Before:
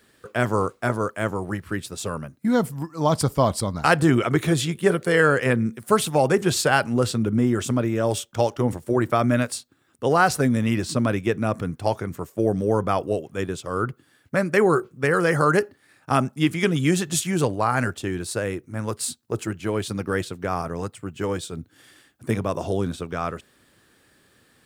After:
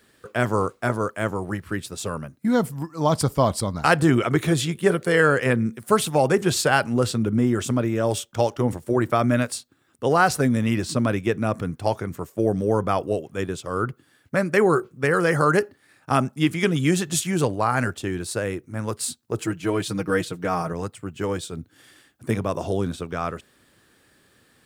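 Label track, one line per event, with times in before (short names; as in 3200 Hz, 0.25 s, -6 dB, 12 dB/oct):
19.400000	20.730000	comb 6.4 ms, depth 74%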